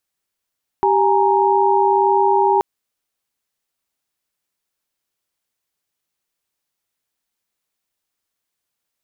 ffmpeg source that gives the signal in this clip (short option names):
-f lavfi -i "aevalsrc='0.15*(sin(2*PI*392*t)+sin(2*PI*830.61*t)+sin(2*PI*932.33*t))':d=1.78:s=44100"